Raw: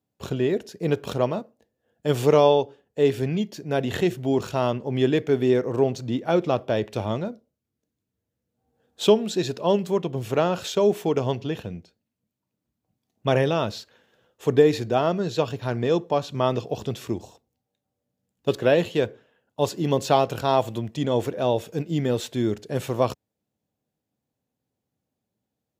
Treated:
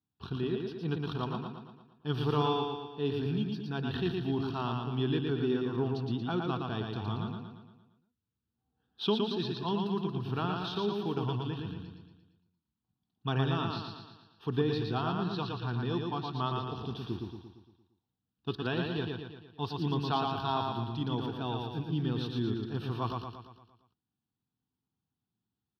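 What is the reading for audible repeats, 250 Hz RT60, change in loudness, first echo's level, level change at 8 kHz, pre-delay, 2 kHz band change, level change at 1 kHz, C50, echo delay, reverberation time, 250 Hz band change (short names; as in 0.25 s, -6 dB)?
6, none, -9.5 dB, -3.5 dB, under -20 dB, none, -8.0 dB, -7.5 dB, none, 0.115 s, none, -7.0 dB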